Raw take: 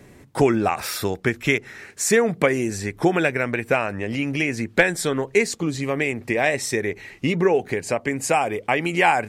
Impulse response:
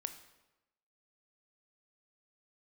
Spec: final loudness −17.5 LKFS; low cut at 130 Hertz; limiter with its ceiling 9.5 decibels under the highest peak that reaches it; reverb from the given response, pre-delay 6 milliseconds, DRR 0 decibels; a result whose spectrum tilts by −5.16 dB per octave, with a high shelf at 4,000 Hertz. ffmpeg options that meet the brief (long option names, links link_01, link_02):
-filter_complex "[0:a]highpass=130,highshelf=frequency=4000:gain=-7,alimiter=limit=-11.5dB:level=0:latency=1,asplit=2[link_01][link_02];[1:a]atrim=start_sample=2205,adelay=6[link_03];[link_02][link_03]afir=irnorm=-1:irlink=0,volume=1.5dB[link_04];[link_01][link_04]amix=inputs=2:normalize=0,volume=4.5dB"